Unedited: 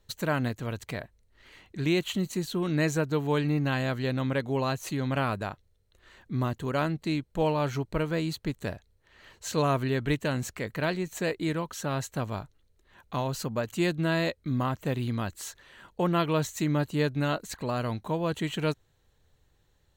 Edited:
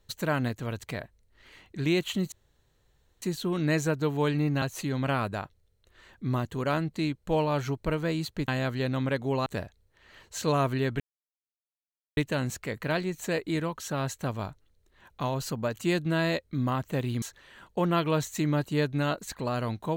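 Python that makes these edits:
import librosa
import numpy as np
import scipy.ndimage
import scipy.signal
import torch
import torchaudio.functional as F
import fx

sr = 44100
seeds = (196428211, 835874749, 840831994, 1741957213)

y = fx.edit(x, sr, fx.insert_room_tone(at_s=2.32, length_s=0.9),
    fx.move(start_s=3.72, length_s=0.98, to_s=8.56),
    fx.insert_silence(at_s=10.1, length_s=1.17),
    fx.cut(start_s=15.15, length_s=0.29), tone=tone)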